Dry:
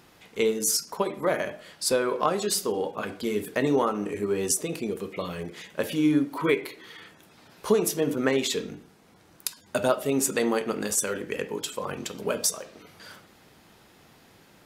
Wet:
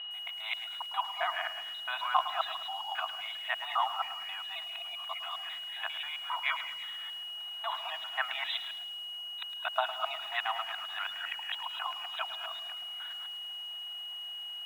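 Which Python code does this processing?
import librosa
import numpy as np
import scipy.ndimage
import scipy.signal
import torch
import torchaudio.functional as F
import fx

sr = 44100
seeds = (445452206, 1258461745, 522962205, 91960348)

y = fx.local_reverse(x, sr, ms=134.0)
y = y + 10.0 ** (-36.0 / 20.0) * np.sin(2.0 * np.pi * 2900.0 * np.arange(len(y)) / sr)
y = fx.brickwall_bandpass(y, sr, low_hz=650.0, high_hz=4000.0)
y = fx.air_absorb(y, sr, metres=140.0)
y = fx.echo_crushed(y, sr, ms=108, feedback_pct=55, bits=8, wet_db=-12)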